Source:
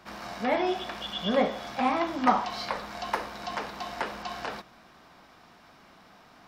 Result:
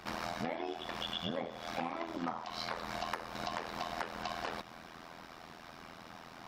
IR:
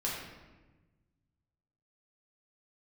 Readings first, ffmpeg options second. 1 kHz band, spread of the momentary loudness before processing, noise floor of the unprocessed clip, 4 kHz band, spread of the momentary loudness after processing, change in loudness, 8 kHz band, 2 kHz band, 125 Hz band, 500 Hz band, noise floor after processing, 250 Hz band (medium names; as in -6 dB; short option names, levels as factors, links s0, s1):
-10.0 dB, 11 LU, -56 dBFS, -5.0 dB, 13 LU, -9.5 dB, -4.0 dB, -7.5 dB, -3.5 dB, -10.5 dB, -53 dBFS, -10.5 dB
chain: -af "tremolo=f=83:d=0.889,acompressor=threshold=0.00794:ratio=12,volume=2.37"